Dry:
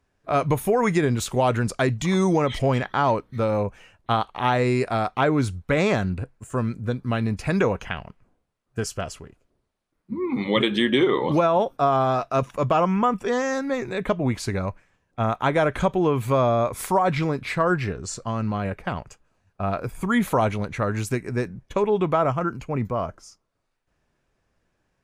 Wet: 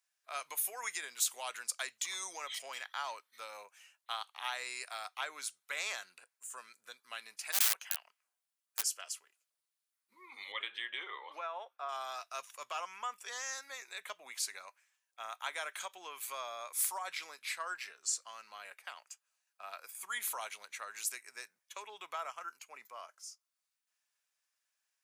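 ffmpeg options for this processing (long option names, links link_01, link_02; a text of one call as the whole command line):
ffmpeg -i in.wav -filter_complex "[0:a]asplit=3[link_01][link_02][link_03];[link_01]afade=type=out:start_time=7.52:duration=0.02[link_04];[link_02]aeval=exprs='(mod(8.41*val(0)+1,2)-1)/8.41':channel_layout=same,afade=type=in:start_time=7.52:duration=0.02,afade=type=out:start_time=8.81:duration=0.02[link_05];[link_03]afade=type=in:start_time=8.81:duration=0.02[link_06];[link_04][link_05][link_06]amix=inputs=3:normalize=0,asettb=1/sr,asplit=3[link_07][link_08][link_09];[link_07]atrim=end=10.524[link_10];[link_08]atrim=start=10.52:end=11.89,asetpts=PTS-STARTPTS,afade=type=in:duration=0.004:curve=qsin,afade=type=out:start_time=1.366:duration=0.004:curve=qsin,acrossover=split=260 2700:gain=0.224 1 0.1[link_11][link_12][link_13];[link_11][link_12][link_13]amix=inputs=3:normalize=0[link_14];[link_09]atrim=start=11.886[link_15];[link_10][link_14]acrossfade=duration=0.004:curve1=hsin:curve2=qsin[link_16];[link_16][link_15]acrossfade=duration=0.004:curve1=qsin:curve2=hsin,highpass=750,aderivative" out.wav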